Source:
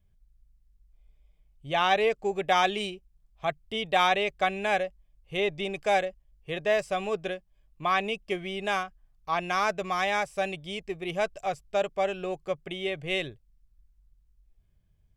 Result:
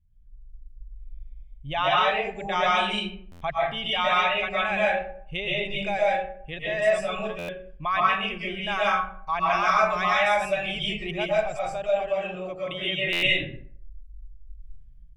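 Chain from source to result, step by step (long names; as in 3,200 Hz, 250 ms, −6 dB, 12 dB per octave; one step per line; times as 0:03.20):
spectral envelope exaggerated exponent 1.5
0:12.01–0:13.08: high-pass filter 120 Hz 6 dB per octave
comb and all-pass reverb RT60 0.53 s, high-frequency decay 0.55×, pre-delay 90 ms, DRR −7 dB
in parallel at −1 dB: downward compressor, threshold −31 dBFS, peak gain reduction 20 dB
on the sum: notch filter 740 Hz, Q 19
automatic gain control gain up to 7 dB
parametric band 430 Hz −14 dB 1.1 octaves
buffer that repeats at 0:03.31/0:07.38/0:13.12, samples 512, times 8
level −4 dB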